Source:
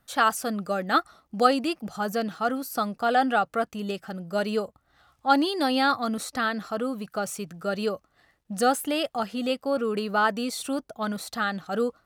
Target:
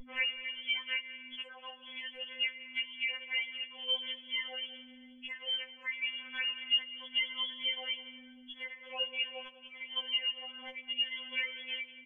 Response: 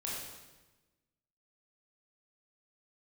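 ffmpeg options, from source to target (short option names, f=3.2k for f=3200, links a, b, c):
-filter_complex "[0:a]agate=range=-12dB:threshold=-49dB:ratio=16:detection=peak,lowpass=f=3k:t=q:w=0.5098,lowpass=f=3k:t=q:w=0.6013,lowpass=f=3k:t=q:w=0.9,lowpass=f=3k:t=q:w=2.563,afreqshift=-3500,highpass=380,asplit=2[a][b];[1:a]atrim=start_sample=2205[c];[b][c]afir=irnorm=-1:irlink=0,volume=-14dB[d];[a][d]amix=inputs=2:normalize=0,aeval=exprs='val(0)+0.00794*(sin(2*PI*50*n/s)+sin(2*PI*2*50*n/s)/2+sin(2*PI*3*50*n/s)/3+sin(2*PI*4*50*n/s)/4+sin(2*PI*5*50*n/s)/5)':c=same,aecho=1:1:5.7:0.99,acompressor=threshold=-35dB:ratio=4,asplit=2[e][f];[f]adelay=195,lowpass=f=1.9k:p=1,volume=-15.5dB,asplit=2[g][h];[h]adelay=195,lowpass=f=1.9k:p=1,volume=0.47,asplit=2[i][j];[j]adelay=195,lowpass=f=1.9k:p=1,volume=0.47,asplit=2[k][l];[l]adelay=195,lowpass=f=1.9k:p=1,volume=0.47[m];[e][g][i][k][m]amix=inputs=5:normalize=0,afftfilt=real='re*3.46*eq(mod(b,12),0)':imag='im*3.46*eq(mod(b,12),0)':win_size=2048:overlap=0.75,volume=3.5dB"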